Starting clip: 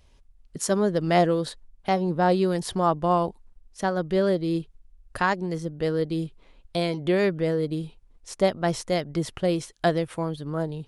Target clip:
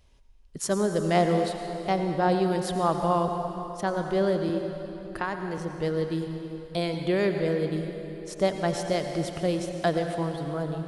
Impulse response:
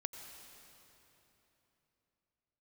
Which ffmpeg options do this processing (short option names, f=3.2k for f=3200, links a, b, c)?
-filter_complex "[0:a]asettb=1/sr,asplit=3[a][b][c];[a]atrim=end=4.494[d];[b]atrim=start=4.49:end=5.58,asetpts=PTS-STARTPTS,afade=t=in:d=0.004:c=qsin,afade=t=out:st=1.086:d=0.004:c=qsin,acrossover=split=230|3400[e][f][g];[e]acompressor=threshold=-41dB:ratio=4[h];[f]acompressor=threshold=-24dB:ratio=4[i];[g]acompressor=threshold=-52dB:ratio=4[j];[h][i][j]amix=inputs=3:normalize=0[k];[c]atrim=start=5.576[l];[d][k]acrossfade=d=0.004:c1=hsin:c2=qsin[m];[m][l]acrossfade=d=0.004:c1=qsin:c2=hsin[n];[1:a]atrim=start_sample=2205[o];[n][o]afir=irnorm=-1:irlink=0"